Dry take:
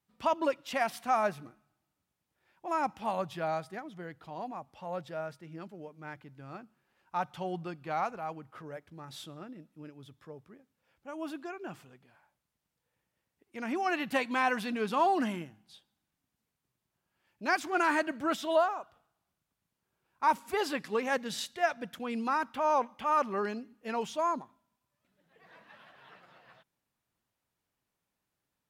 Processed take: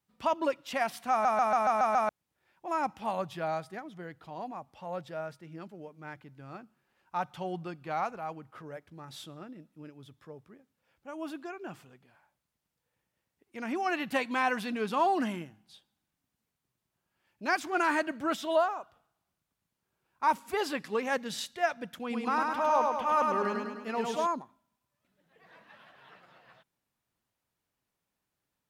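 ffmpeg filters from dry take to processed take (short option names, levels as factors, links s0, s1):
-filter_complex "[0:a]asettb=1/sr,asplit=3[s0][s1][s2];[s0]atrim=end=22.004[s3];[s1]atrim=start=22:end=24.27,asetpts=PTS-STARTPTS,afade=t=in:d=0.004:c=qsin,afade=t=out:st=2.266:d=0.004:c=qsin,aecho=1:1:103|206|309|412|515|618|721|824:0.708|0.396|0.222|0.124|0.0696|0.039|0.0218|0.0122,atrim=end_sample=100107[s4];[s2]atrim=start=24.266[s5];[s3][s4]acrossfade=d=0.004:c1=hsin:c2=qsin[s6];[s6][s5]acrossfade=d=0.004:c1=qsin:c2=hsin,asplit=8[s7][s8][s9][s10][s11][s12][s13][s14];[s7]atrim=end=1.252[s15];[s8]atrim=start=1.108:end=1.252[s16];[s9]atrim=start=1.108:end=1.252[s17];[s10]atrim=start=1.108:end=1.252[s18];[s11]atrim=start=1.108:end=1.252[s19];[s12]atrim=start=1.108:end=1.252[s20];[s13]atrim=start=1.108:end=1.252[s21];[s14]atrim=start=2.088[s22];[s15][s16]acrossfade=d=0.004:c1=hsin:c2=hsin[s23];[s23][s17]acrossfade=d=0.004:c1=hsin:c2=hsin[s24];[s24][s18]acrossfade=d=0.004:c1=hsin:c2=hsin[s25];[s25][s19]acrossfade=d=0.004:c1=hsin:c2=hsin[s26];[s26][s20]acrossfade=d=0.004:c1=hsin:c2=hsin[s27];[s27][s21]acrossfade=d=0.004:c1=hsin:c2=hsin[s28];[s28][s22]acrossfade=d=0.004:c1=hsin:c2=hsin"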